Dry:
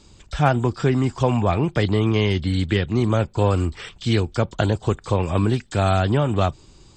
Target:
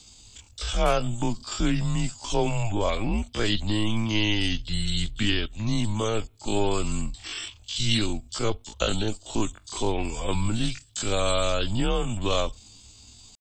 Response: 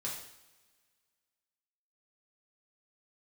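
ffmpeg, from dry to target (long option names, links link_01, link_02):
-af "aexciter=amount=4.4:drive=2.4:freq=2800,atempo=0.52,afreqshift=-110,volume=-5dB"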